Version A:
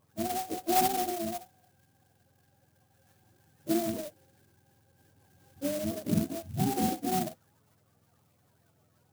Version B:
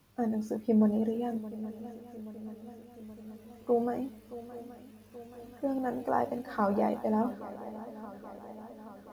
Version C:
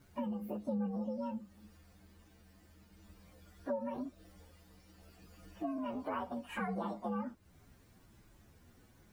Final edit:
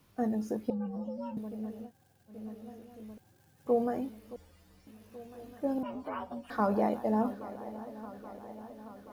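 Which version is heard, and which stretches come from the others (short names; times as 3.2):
B
0.7–1.37 from C
1.87–2.32 from A, crossfade 0.10 s
3.18–3.67 from A
4.36–4.87 from C
5.83–6.5 from C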